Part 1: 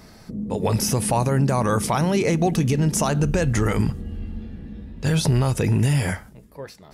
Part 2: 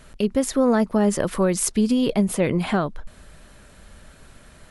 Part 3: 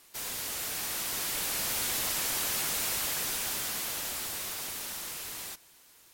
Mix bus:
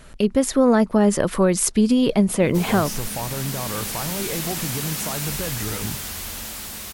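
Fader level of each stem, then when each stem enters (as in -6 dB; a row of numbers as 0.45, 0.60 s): -9.0, +2.5, +2.0 dB; 2.05, 0.00, 2.40 s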